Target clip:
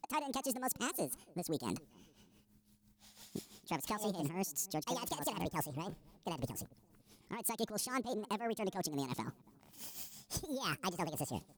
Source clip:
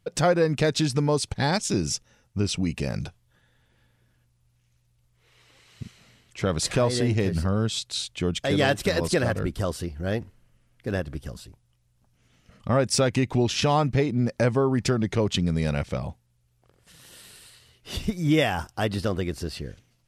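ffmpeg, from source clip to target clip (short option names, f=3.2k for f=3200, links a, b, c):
-filter_complex "[0:a]highshelf=f=3.7k:g=8,areverse,acompressor=threshold=-33dB:ratio=6,areverse,tremolo=f=3.4:d=0.7,asetrate=76440,aresample=44100,asplit=2[a][b];[b]adelay=282,lowpass=f=850:p=1,volume=-23.5dB,asplit=2[c][d];[d]adelay=282,lowpass=f=850:p=1,volume=0.43,asplit=2[e][f];[f]adelay=282,lowpass=f=850:p=1,volume=0.43[g];[a][c][e][g]amix=inputs=4:normalize=0"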